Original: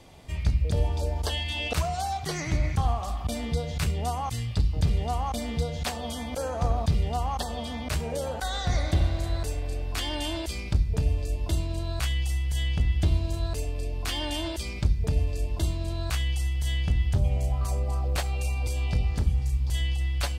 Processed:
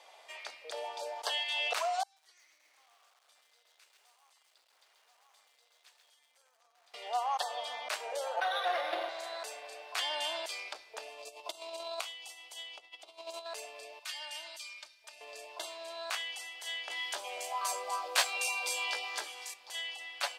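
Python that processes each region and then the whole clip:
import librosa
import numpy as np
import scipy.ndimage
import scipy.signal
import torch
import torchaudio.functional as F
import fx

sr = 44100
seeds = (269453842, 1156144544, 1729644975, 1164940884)

y = fx.chain(x, sr, fx.tone_stack(knobs='6-0-2'),
    fx.comb_fb(f0_hz=100.0, decay_s=1.5, harmonics='odd', damping=0.0, mix_pct=70),
    fx.echo_crushed(ms=133, feedback_pct=55, bits=10, wet_db=-3.5), at=(2.03, 6.94))
y = fx.chain(y, sr, fx.low_shelf(hz=480.0, db=8.5),
    fx.comb(ms=5.8, depth=0.94),
    fx.resample_linear(factor=6), at=(8.36, 9.09))
y = fx.chain(y, sr, fx.over_compress(threshold_db=-30.0, ratio=-1.0),
    fx.peak_eq(hz=1700.0, db=-13.0, octaves=0.43), at=(11.19, 13.46))
y = fx.chain(y, sr, fx.tone_stack(knobs='5-5-5'),
    fx.comb(ms=3.3, depth=0.87), at=(13.99, 15.21))
y = fx.chain(y, sr, fx.high_shelf(hz=2200.0, db=10.0),
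    fx.doubler(ms=16.0, db=-5.0),
    fx.small_body(hz=(340.0, 1000.0, 1600.0, 3400.0), ring_ms=45, db=7), at=(16.9, 19.54))
y = scipy.signal.sosfilt(scipy.signal.cheby2(4, 60, 180.0, 'highpass', fs=sr, output='sos'), y)
y = fx.high_shelf(y, sr, hz=7700.0, db=-9.5)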